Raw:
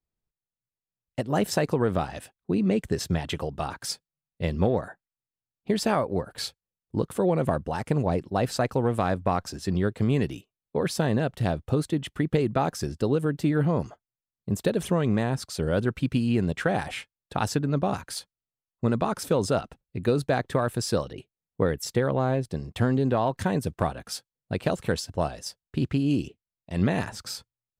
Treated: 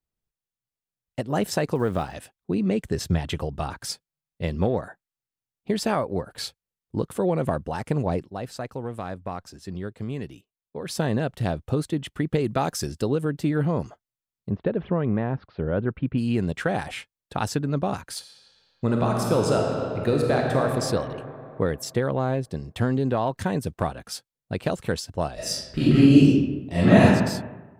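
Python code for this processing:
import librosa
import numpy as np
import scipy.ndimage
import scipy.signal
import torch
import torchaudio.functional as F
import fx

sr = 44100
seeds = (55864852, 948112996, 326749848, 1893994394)

y = fx.block_float(x, sr, bits=7, at=(1.75, 2.15))
y = fx.low_shelf(y, sr, hz=120.0, db=8.0, at=(2.94, 3.92))
y = fx.high_shelf(y, sr, hz=3200.0, db=7.5, at=(12.44, 13.04))
y = fx.gaussian_blur(y, sr, sigma=3.6, at=(14.49, 16.17), fade=0.02)
y = fx.reverb_throw(y, sr, start_s=18.18, length_s=2.42, rt60_s=2.9, drr_db=-0.5)
y = fx.reverb_throw(y, sr, start_s=25.34, length_s=1.73, rt60_s=1.1, drr_db=-11.0)
y = fx.edit(y, sr, fx.clip_gain(start_s=8.26, length_s=2.62, db=-8.0), tone=tone)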